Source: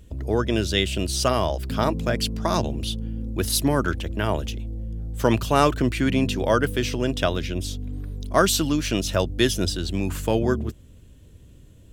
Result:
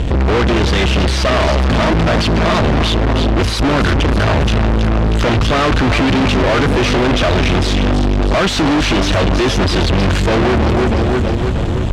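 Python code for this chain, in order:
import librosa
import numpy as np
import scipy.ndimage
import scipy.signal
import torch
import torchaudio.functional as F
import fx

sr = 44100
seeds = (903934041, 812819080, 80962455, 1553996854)

y = 10.0 ** (-20.0 / 20.0) * np.tanh(x / 10.0 ** (-20.0 / 20.0))
y = fx.peak_eq(y, sr, hz=88.0, db=5.5, octaves=0.96, at=(3.78, 5.99))
y = fx.echo_feedback(y, sr, ms=320, feedback_pct=48, wet_db=-12.5)
y = fx.fuzz(y, sr, gain_db=50.0, gate_db=-55.0)
y = scipy.signal.sosfilt(scipy.signal.butter(2, 3700.0, 'lowpass', fs=sr, output='sos'), y)
y = y * 10.0 ** (1.5 / 20.0)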